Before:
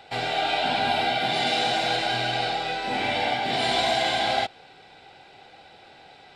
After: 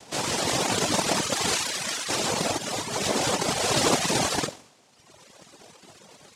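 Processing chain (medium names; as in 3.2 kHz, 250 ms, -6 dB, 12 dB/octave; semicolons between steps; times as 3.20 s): spectral selection erased 1.55–2.08 s, 360–2100 Hz; on a send: flutter echo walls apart 11.9 m, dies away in 0.61 s; on the sum: chorus 0.32 Hz, delay 18.5 ms, depth 5.8 ms; noise-vocoded speech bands 2; reverb removal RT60 1.3 s; trim +4 dB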